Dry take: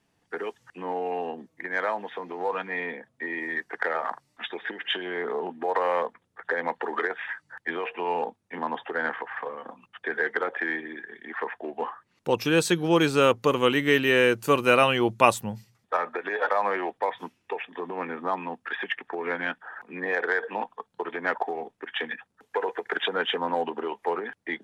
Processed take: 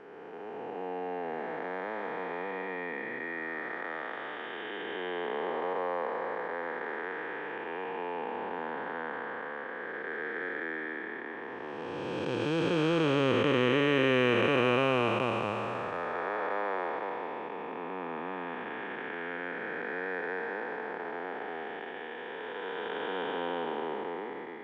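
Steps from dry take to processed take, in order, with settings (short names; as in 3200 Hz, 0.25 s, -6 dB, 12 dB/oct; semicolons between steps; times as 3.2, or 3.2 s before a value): time blur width 0.973 s; LPF 4600 Hz 12 dB/oct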